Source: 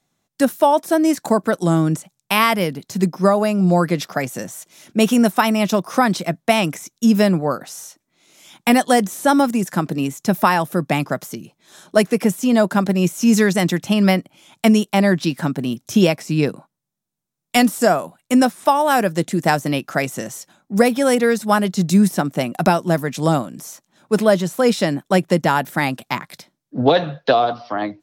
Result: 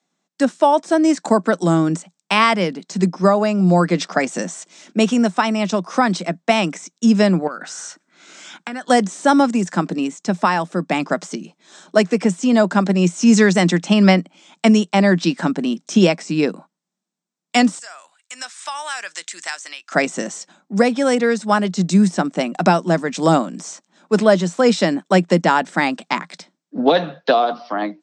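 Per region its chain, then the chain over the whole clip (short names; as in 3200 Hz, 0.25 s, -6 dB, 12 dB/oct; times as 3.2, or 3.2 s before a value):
7.47–8.9 bell 1500 Hz +14 dB 0.4 oct + compressor 5:1, threshold -28 dBFS
17.79–19.92 Chebyshev high-pass 1800 Hz + high shelf 6000 Hz +8.5 dB + compressor 2:1, threshold -43 dBFS
whole clip: Chebyshev band-pass 170–8200 Hz, order 5; AGC; gain -1 dB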